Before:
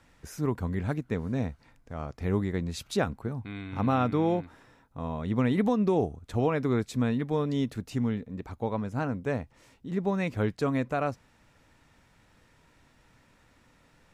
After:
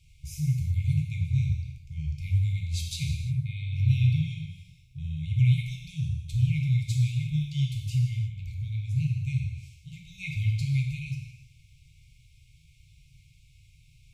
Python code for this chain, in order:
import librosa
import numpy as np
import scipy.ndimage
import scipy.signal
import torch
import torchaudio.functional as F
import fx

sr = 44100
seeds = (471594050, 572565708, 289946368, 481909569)

p1 = fx.brickwall_bandstop(x, sr, low_hz=150.0, high_hz=2100.0)
p2 = fx.low_shelf(p1, sr, hz=410.0, db=6.0)
p3 = p2 + fx.echo_single(p2, sr, ms=157, db=-21.0, dry=0)
y = fx.rev_gated(p3, sr, seeds[0], gate_ms=380, shape='falling', drr_db=-0.5)